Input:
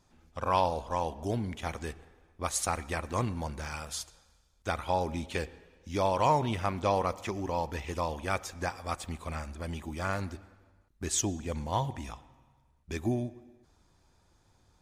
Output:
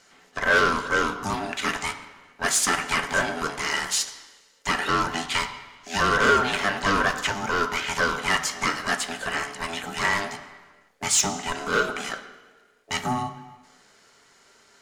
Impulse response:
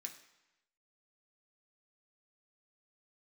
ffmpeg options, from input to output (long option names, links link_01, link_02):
-filter_complex "[0:a]asplit=2[link_01][link_02];[link_02]highpass=frequency=720:poles=1,volume=19dB,asoftclip=type=tanh:threshold=-13.5dB[link_03];[link_01][link_03]amix=inputs=2:normalize=0,lowpass=frequency=4600:poles=1,volume=-6dB,aeval=exprs='val(0)*sin(2*PI*500*n/s)':channel_layout=same,asplit=2[link_04][link_05];[1:a]atrim=start_sample=2205,asetrate=38367,aresample=44100,lowshelf=frequency=480:gain=-5[link_06];[link_05][link_06]afir=irnorm=-1:irlink=0,volume=7dB[link_07];[link_04][link_07]amix=inputs=2:normalize=0"